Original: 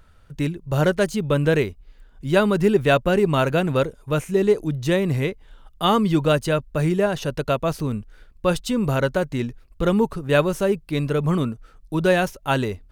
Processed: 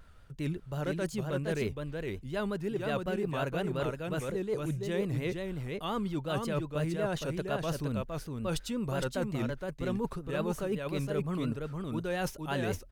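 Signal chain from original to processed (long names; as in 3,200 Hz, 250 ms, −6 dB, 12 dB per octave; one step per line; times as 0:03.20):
reversed playback
downward compressor 12 to 1, threshold −27 dBFS, peak gain reduction 15.5 dB
reversed playback
single-tap delay 464 ms −4 dB
pitch vibrato 5.6 Hz 85 cents
level −3 dB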